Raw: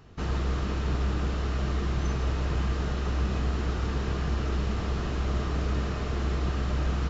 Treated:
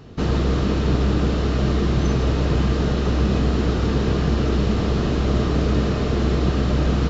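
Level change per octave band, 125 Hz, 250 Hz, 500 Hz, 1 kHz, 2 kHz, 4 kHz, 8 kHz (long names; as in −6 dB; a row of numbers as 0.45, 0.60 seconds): +8.5 dB, +12.5 dB, +12.0 dB, +7.0 dB, +6.5 dB, +9.0 dB, can't be measured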